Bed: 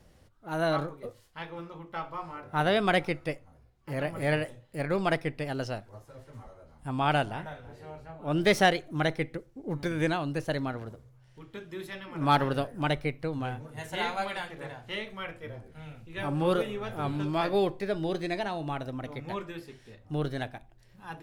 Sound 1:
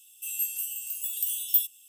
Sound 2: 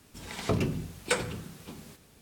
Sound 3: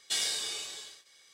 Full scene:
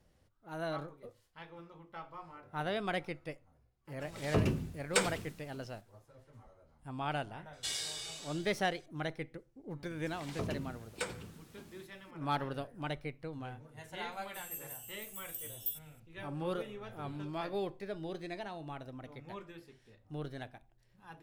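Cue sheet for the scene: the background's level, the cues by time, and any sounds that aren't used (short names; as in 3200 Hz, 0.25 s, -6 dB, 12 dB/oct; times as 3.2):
bed -10.5 dB
3.85 add 2 -6 dB + three-band expander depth 70%
7.53 add 3 -7 dB
9.9 add 2 -10.5 dB
14.12 add 1 -14.5 dB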